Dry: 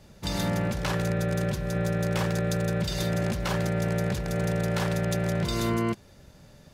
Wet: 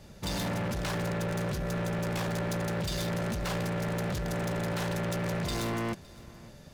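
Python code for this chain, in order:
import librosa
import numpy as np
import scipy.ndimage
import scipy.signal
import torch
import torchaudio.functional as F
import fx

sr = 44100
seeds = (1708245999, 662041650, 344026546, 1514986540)

p1 = np.clip(x, -10.0 ** (-31.5 / 20.0), 10.0 ** (-31.5 / 20.0))
p2 = p1 + fx.echo_single(p1, sr, ms=563, db=-22.0, dry=0)
y = p2 * librosa.db_to_amplitude(1.5)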